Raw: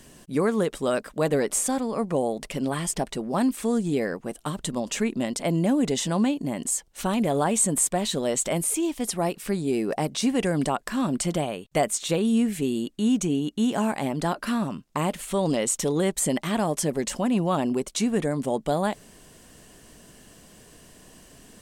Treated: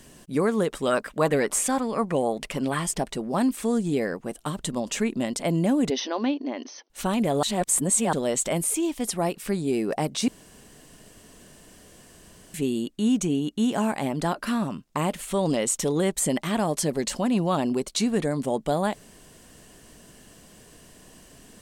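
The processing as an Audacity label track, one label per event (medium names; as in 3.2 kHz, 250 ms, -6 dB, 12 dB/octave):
0.720000	2.840000	sweeping bell 3.8 Hz 980–2800 Hz +9 dB
5.900000	6.900000	brick-wall FIR band-pass 230–6300 Hz
7.430000	8.130000	reverse
10.280000	12.540000	room tone
16.680000	18.430000	peaking EQ 4.3 kHz +6.5 dB 0.33 oct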